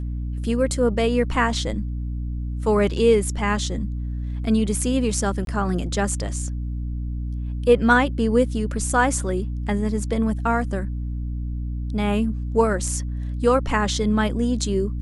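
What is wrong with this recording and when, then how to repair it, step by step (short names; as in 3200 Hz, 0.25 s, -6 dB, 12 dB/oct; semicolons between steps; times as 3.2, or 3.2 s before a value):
hum 60 Hz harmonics 5 -27 dBFS
5.45–5.47 gap 22 ms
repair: de-hum 60 Hz, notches 5; interpolate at 5.45, 22 ms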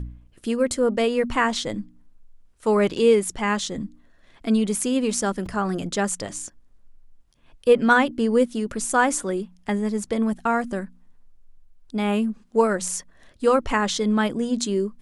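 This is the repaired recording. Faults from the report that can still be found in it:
none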